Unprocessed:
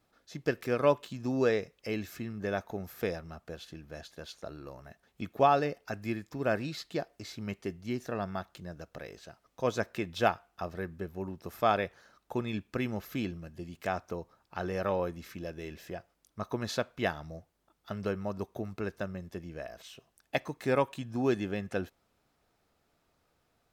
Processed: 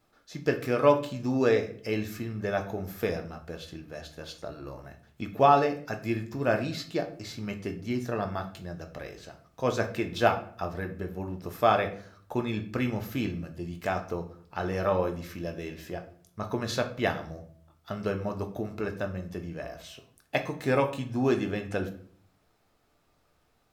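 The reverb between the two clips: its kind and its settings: simulated room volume 59 m³, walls mixed, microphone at 0.39 m; trim +2.5 dB

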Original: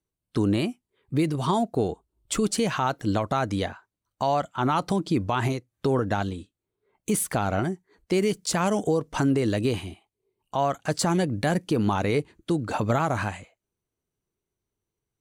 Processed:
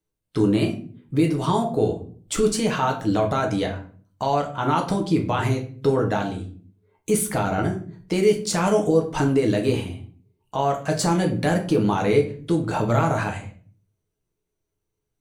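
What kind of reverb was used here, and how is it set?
simulated room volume 37 m³, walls mixed, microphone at 0.51 m

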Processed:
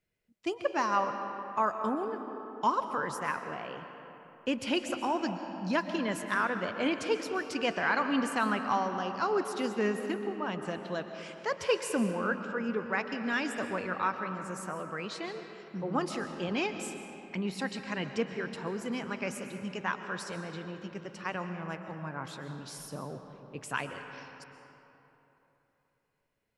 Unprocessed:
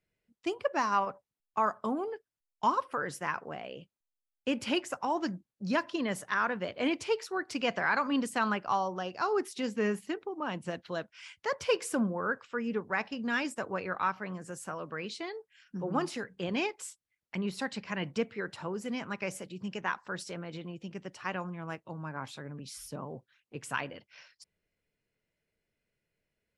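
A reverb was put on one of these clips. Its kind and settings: algorithmic reverb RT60 3.4 s, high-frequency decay 0.55×, pre-delay 90 ms, DRR 7 dB

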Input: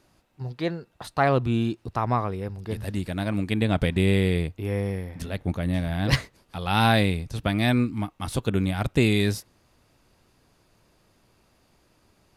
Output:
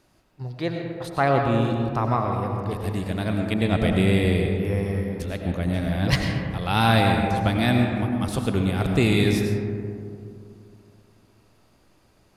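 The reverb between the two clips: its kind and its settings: algorithmic reverb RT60 2.6 s, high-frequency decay 0.3×, pre-delay 60 ms, DRR 2 dB

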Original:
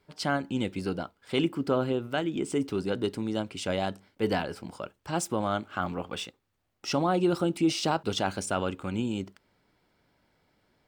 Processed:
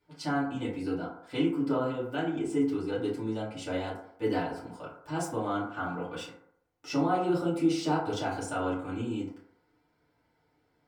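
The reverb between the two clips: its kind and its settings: FDN reverb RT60 0.7 s, low-frequency decay 0.75×, high-frequency decay 0.35×, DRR -9 dB; trim -12.5 dB

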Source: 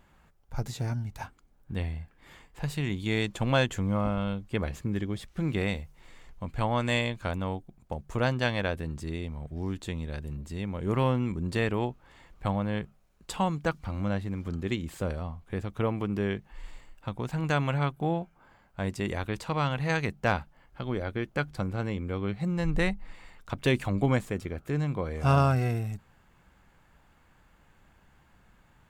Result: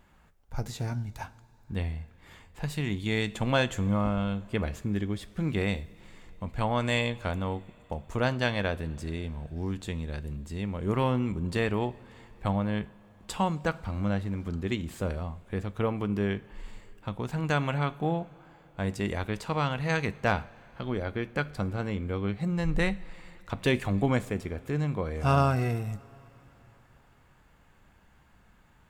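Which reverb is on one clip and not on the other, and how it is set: two-slope reverb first 0.43 s, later 4.5 s, from -18 dB, DRR 13.5 dB

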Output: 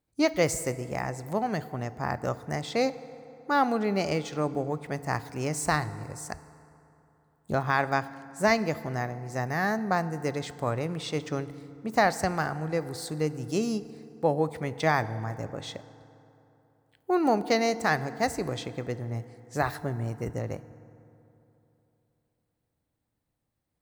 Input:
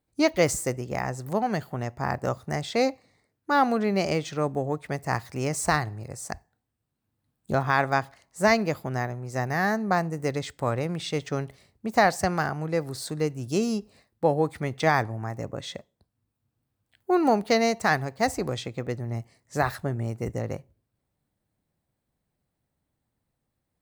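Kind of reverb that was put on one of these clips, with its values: FDN reverb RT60 3.2 s, high-frequency decay 0.5×, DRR 14.5 dB; trim -2.5 dB

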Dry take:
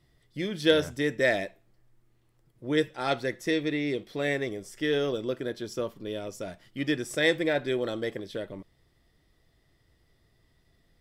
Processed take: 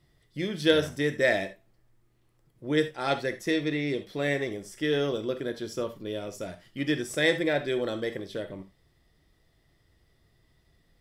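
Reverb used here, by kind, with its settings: gated-style reverb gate 100 ms flat, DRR 9 dB

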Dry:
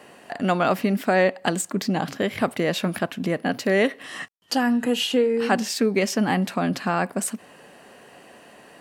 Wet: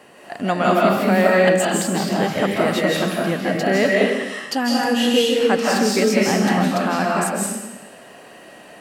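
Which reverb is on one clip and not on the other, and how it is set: algorithmic reverb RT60 0.99 s, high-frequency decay 1×, pre-delay 120 ms, DRR -4 dB

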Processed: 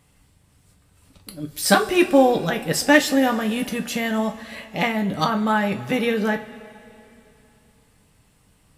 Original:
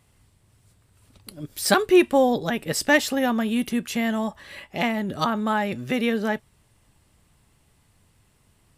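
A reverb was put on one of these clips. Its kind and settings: two-slope reverb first 0.23 s, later 3 s, from -21 dB, DRR 3.5 dB; trim +1.5 dB

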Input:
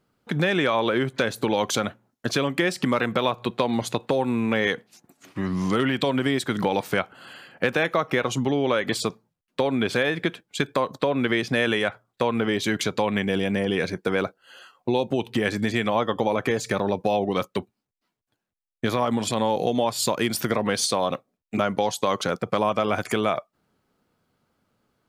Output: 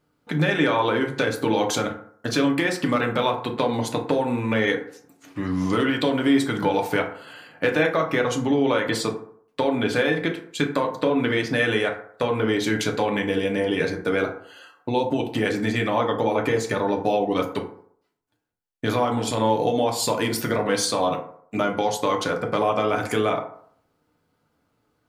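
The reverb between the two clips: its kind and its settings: FDN reverb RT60 0.6 s, low-frequency decay 0.85×, high-frequency decay 0.45×, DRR 1 dB; trim -1.5 dB

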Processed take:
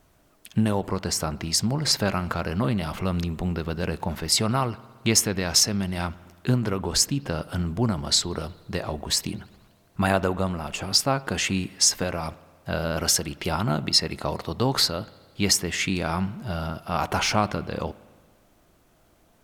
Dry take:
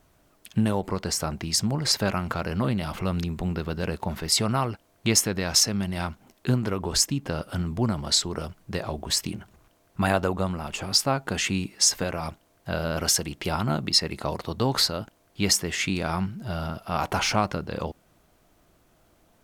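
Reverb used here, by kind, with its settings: spring tank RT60 1.6 s, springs 57 ms, chirp 25 ms, DRR 19 dB; trim +1 dB

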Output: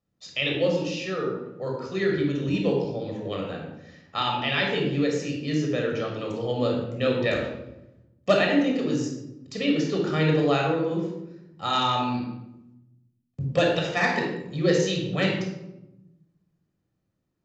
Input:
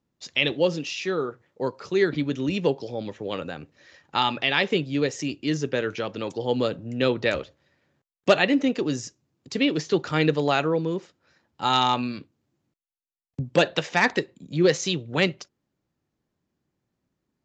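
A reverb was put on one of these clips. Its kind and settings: simulated room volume 3100 m³, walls furnished, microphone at 6.2 m; trim -7 dB

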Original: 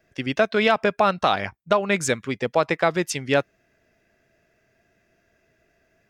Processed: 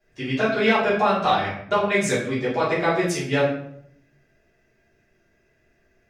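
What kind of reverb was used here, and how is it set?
simulated room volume 120 m³, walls mixed, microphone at 3.2 m; trim -11.5 dB

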